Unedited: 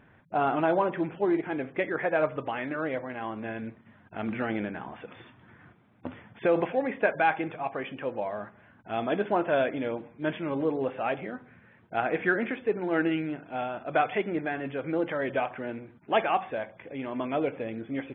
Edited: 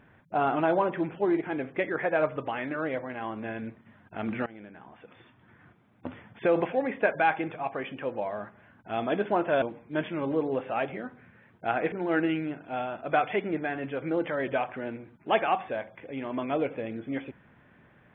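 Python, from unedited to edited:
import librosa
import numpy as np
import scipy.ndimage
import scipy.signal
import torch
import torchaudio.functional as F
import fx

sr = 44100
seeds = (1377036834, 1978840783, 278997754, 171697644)

y = fx.edit(x, sr, fx.fade_in_from(start_s=4.46, length_s=1.65, floor_db=-19.5),
    fx.cut(start_s=9.62, length_s=0.29),
    fx.cut(start_s=12.21, length_s=0.53), tone=tone)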